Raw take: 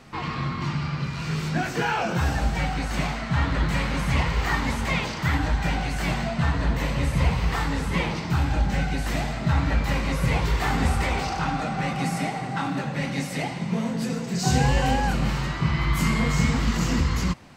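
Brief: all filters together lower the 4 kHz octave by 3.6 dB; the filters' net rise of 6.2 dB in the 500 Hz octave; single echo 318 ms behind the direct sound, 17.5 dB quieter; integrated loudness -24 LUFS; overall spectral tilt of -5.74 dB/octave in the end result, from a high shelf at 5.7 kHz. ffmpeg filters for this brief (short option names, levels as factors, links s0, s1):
-af "equalizer=f=500:t=o:g=7.5,equalizer=f=4000:t=o:g=-8.5,highshelf=f=5700:g=8.5,aecho=1:1:318:0.133"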